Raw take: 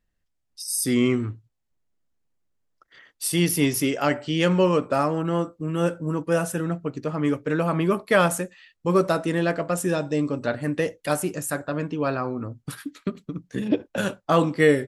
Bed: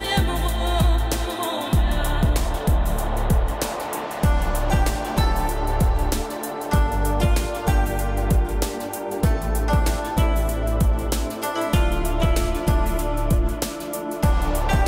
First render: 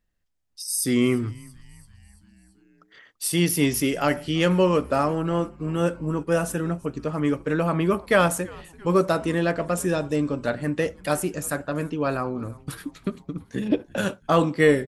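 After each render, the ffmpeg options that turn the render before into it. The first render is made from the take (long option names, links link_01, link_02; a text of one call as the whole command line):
ffmpeg -i in.wav -filter_complex "[0:a]asplit=6[link_01][link_02][link_03][link_04][link_05][link_06];[link_02]adelay=337,afreqshift=-110,volume=-23dB[link_07];[link_03]adelay=674,afreqshift=-220,volume=-27.2dB[link_08];[link_04]adelay=1011,afreqshift=-330,volume=-31.3dB[link_09];[link_05]adelay=1348,afreqshift=-440,volume=-35.5dB[link_10];[link_06]adelay=1685,afreqshift=-550,volume=-39.6dB[link_11];[link_01][link_07][link_08][link_09][link_10][link_11]amix=inputs=6:normalize=0" out.wav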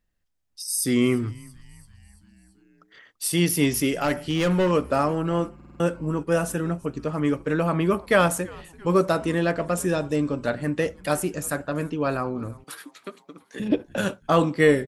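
ffmpeg -i in.wav -filter_complex "[0:a]asettb=1/sr,asplit=3[link_01][link_02][link_03];[link_01]atrim=end=4.024[link_04];[link_02]atrim=start=4.02:end=4.71,asetpts=PTS-STARTPTS,afade=type=in:duration=0.004:curve=qsin,afade=type=out:start_time=0.686:duration=0.004:curve=qsin,asoftclip=type=hard:threshold=-17dB[link_05];[link_03]atrim=start=4.706[link_06];[link_04][link_05]acrossfade=duration=0.004:curve1=hsin:curve2=qsin[link_07];[link_07][link_06]acrossfade=duration=0.004:curve1=qsin:curve2=hsin,asettb=1/sr,asplit=3[link_08][link_09][link_10];[link_08]atrim=end=12.644[link_11];[link_09]atrim=start=12.64:end=13.6,asetpts=PTS-STARTPTS,afade=type=in:duration=0.004:curve=qsin,afade=type=out:start_time=0.956:duration=0.004:curve=qsin,highpass=520[link_12];[link_10]atrim=start=13.596[link_13];[link_11][link_12]acrossfade=duration=0.004:curve1=hsin:curve2=qsin[link_14];[link_14][link_13]acrossfade=duration=0.004:curve1=qsin:curve2=hsin,asplit=6[link_15][link_16][link_17][link_18][link_19][link_20];[link_15]atrim=end=5.602[link_21];[link_16]atrim=start=5.548:end=5.602[link_22];[link_17]atrim=start=5.548:end=5.602[link_23];[link_18]atrim=start=5.548:end=5.602[link_24];[link_19]atrim=start=5.548:end=5.602[link_25];[link_20]atrim=start=5.798[link_26];[link_21][link_22]acrossfade=duration=0.004:curve1=hsin:curve2=hsin[link_27];[link_27][link_23]acrossfade=duration=0.004:curve1=hsin:curve2=hsin[link_28];[link_28][link_24]acrossfade=duration=0.004:curve1=hsin:curve2=hsin[link_29];[link_29][link_25]acrossfade=duration=0.004:curve1=hsin:curve2=hsin[link_30];[link_30][link_26]acrossfade=duration=0.004:curve1=hsin:curve2=hsin" out.wav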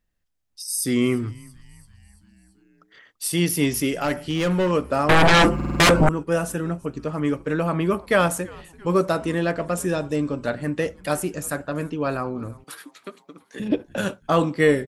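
ffmpeg -i in.wav -filter_complex "[0:a]asettb=1/sr,asplit=3[link_01][link_02][link_03];[link_01]atrim=end=5.094[link_04];[link_02]atrim=start=5.09:end=6.09,asetpts=PTS-STARTPTS,afade=type=in:duration=0.004:curve=qsin,afade=type=out:start_time=0.996:duration=0.004:curve=qsin,aeval=exprs='0.299*sin(PI/2*7.94*val(0)/0.299)':channel_layout=same[link_05];[link_03]atrim=start=6.086[link_06];[link_04][link_05]acrossfade=duration=0.004:curve1=hsin:curve2=qsin[link_07];[link_07][link_06]acrossfade=duration=0.004:curve1=qsin:curve2=hsin" out.wav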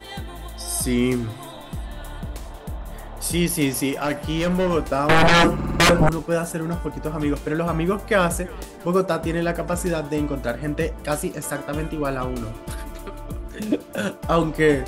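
ffmpeg -i in.wav -i bed.wav -filter_complex "[1:a]volume=-13dB[link_01];[0:a][link_01]amix=inputs=2:normalize=0" out.wav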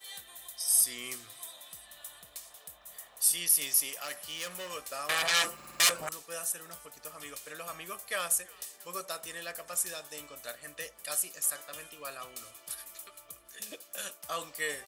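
ffmpeg -i in.wav -af "aderivative,aecho=1:1:1.7:0.37" out.wav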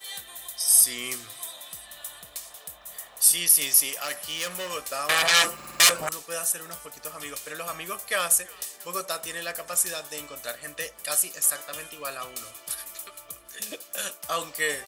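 ffmpeg -i in.wav -af "volume=7.5dB,alimiter=limit=-3dB:level=0:latency=1" out.wav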